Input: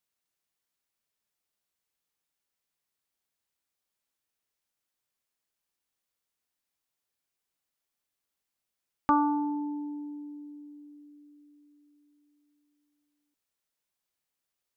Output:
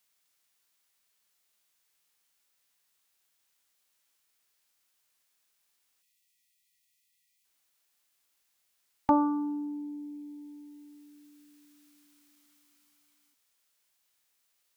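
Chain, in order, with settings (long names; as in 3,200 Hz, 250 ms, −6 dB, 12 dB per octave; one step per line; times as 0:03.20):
time-frequency box erased 0:06.02–0:07.45, 240–1,900 Hz
formants moved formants −3 semitones
one half of a high-frequency compander encoder only
level +1.5 dB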